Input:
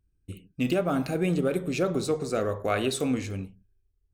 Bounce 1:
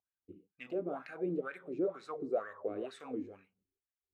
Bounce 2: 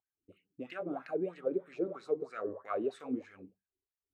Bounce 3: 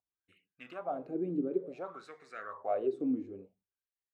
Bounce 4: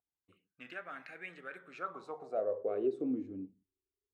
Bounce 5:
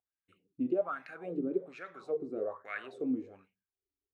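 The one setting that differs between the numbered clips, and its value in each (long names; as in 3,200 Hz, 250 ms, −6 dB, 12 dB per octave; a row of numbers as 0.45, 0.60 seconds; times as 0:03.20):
LFO wah, speed: 2.1, 3.1, 0.56, 0.22, 1.2 Hertz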